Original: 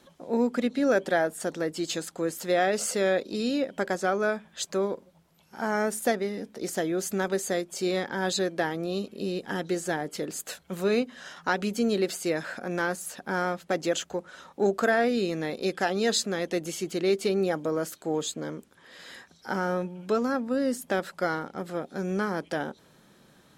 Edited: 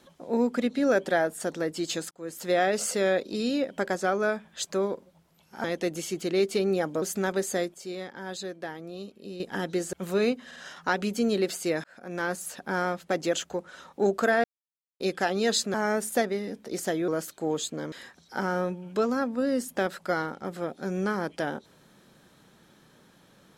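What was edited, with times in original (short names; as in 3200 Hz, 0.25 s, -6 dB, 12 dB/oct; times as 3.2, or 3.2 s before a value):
2.11–2.49 fade in
5.64–6.98 swap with 16.34–17.72
7.7–9.36 gain -9 dB
9.89–10.63 cut
11.16 stutter 0.05 s, 3 plays
12.44–12.94 fade in
15.04–15.6 mute
18.56–19.05 cut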